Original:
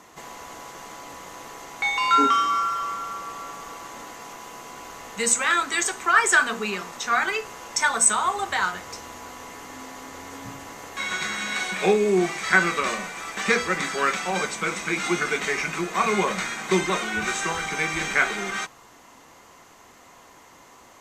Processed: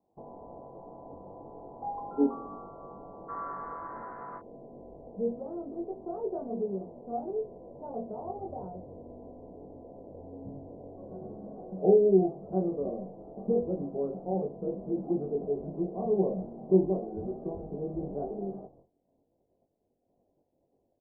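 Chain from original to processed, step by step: gate -47 dBFS, range -21 dB; steep low-pass 820 Hz 48 dB/oct, from 3.28 s 1600 Hz, from 4.38 s 680 Hz; doubler 21 ms -3 dB; gain -3 dB

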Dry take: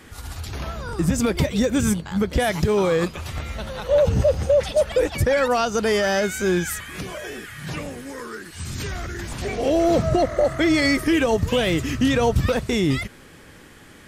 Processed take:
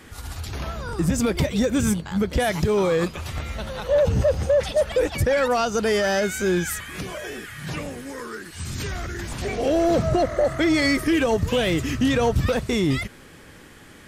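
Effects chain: soft clip -11 dBFS, distortion -22 dB

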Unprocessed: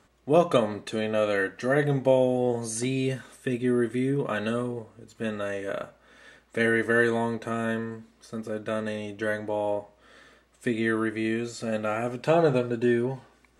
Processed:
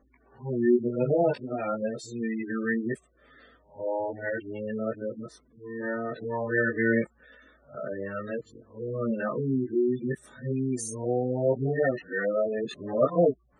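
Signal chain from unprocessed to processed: whole clip reversed; chorus voices 4, 0.15 Hz, delay 19 ms, depth 3.7 ms; spectral gate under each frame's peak -15 dB strong; gain +1.5 dB

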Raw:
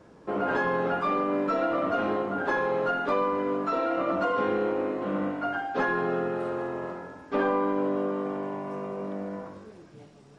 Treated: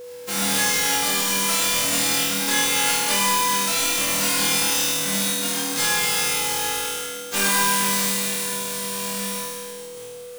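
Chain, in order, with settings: spectral whitening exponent 0.1; flutter echo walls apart 4.3 m, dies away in 1.3 s; whine 490 Hz -35 dBFS

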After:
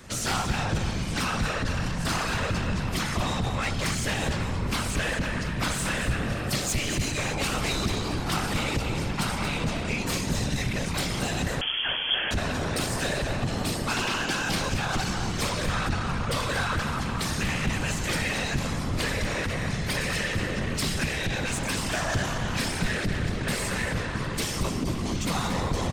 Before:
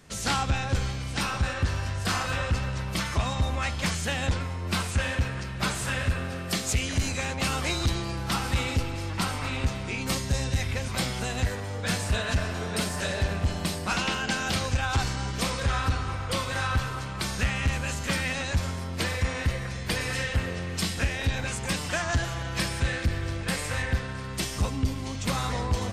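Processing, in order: in parallel at +2 dB: limiter -28.5 dBFS, peak gain reduction 10.5 dB; on the sum: soft clip -22.5 dBFS, distortion -12 dB; whisperiser; on a send: echo 0.229 s -9.5 dB; 11.61–12.31 on the sum: inverted band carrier 3300 Hz

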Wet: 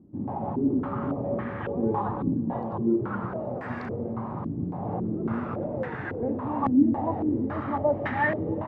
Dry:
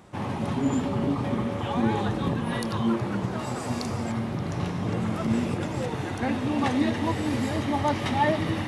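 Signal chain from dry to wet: echo 0.313 s -11.5 dB; stepped low-pass 3.6 Hz 280–1700 Hz; gain -5.5 dB

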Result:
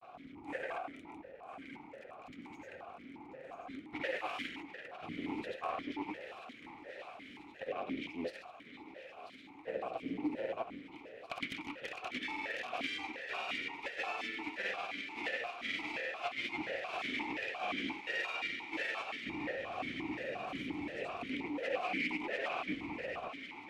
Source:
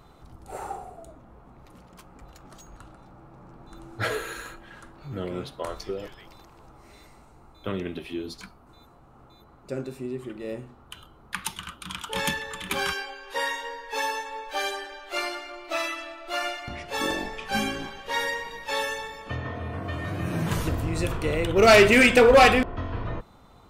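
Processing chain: octaver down 2 oct, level +3 dB; grains, pitch spread up and down by 0 st; reverse; compressor 16:1, threshold -33 dBFS, peak gain reduction 22.5 dB; reverse; full-wave rectifier; bell 2100 Hz +5 dB 0.58 oct; thinning echo 0.988 s, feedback 79%, high-pass 570 Hz, level -10 dB; vowel sequencer 5.7 Hz; gain +13.5 dB

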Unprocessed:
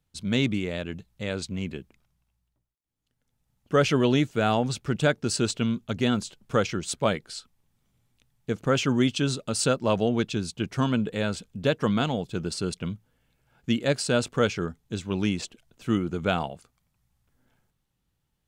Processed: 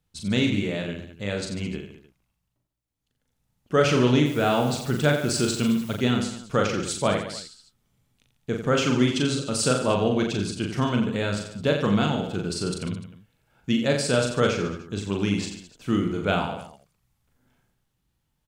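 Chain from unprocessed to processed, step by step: 4.25–5.95 added noise white -50 dBFS; on a send: reverse bouncing-ball echo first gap 40 ms, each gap 1.2×, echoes 5

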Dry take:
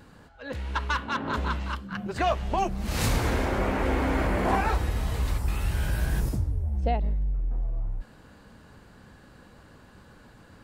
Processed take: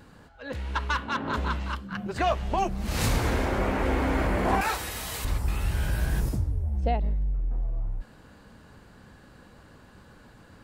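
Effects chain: 4.61–5.25 tilt +3.5 dB/oct

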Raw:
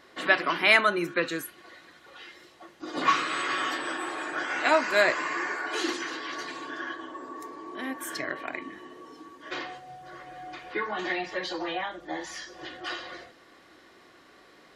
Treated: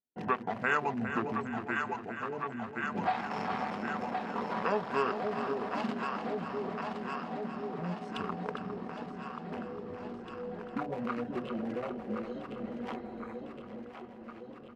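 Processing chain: Wiener smoothing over 25 samples; gate -52 dBFS, range -44 dB; echo with dull and thin repeats by turns 0.531 s, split 920 Hz, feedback 79%, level -7.5 dB; dynamic EQ 490 Hz, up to -4 dB, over -49 dBFS, Q 5; compressor 2:1, threshold -35 dBFS, peak gain reduction 11.5 dB; pitch shift -7 st; feedback echo 0.406 s, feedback 48%, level -9.5 dB; spectral repair 12.99–13.36, 2500–6100 Hz after; gain +1.5 dB

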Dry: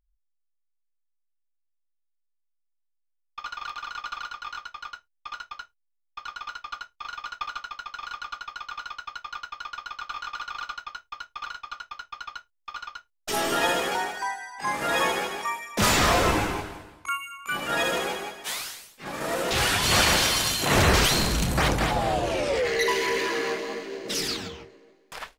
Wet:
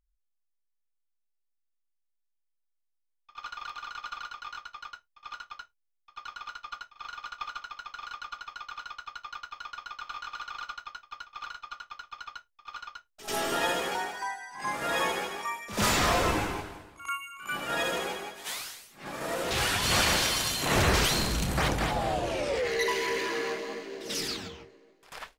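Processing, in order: pre-echo 91 ms -14 dB; gain -4.5 dB

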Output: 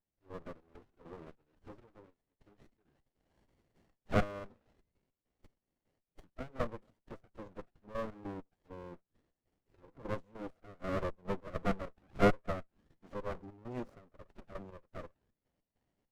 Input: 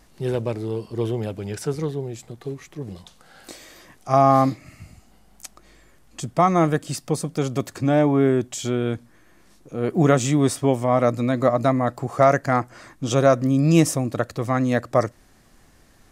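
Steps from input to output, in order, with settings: bin magnitudes rounded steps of 15 dB; dynamic EQ 820 Hz, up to -7 dB, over -33 dBFS, Q 1.6; auto-wah 670–2800 Hz, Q 12, down, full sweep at -20.5 dBFS; step gate "..xx.x.xx..x.x" 100 bpm -12 dB; formant-preserving pitch shift -5 st; running maximum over 33 samples; gain +1 dB

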